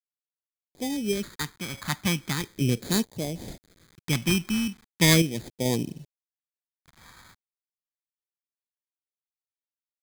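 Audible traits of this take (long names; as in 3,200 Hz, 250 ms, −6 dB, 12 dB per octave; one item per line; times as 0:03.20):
aliases and images of a low sample rate 2,800 Hz, jitter 0%
sample-and-hold tremolo 2.3 Hz, depth 70%
a quantiser's noise floor 10 bits, dither none
phaser sweep stages 2, 0.39 Hz, lowest notch 450–1,300 Hz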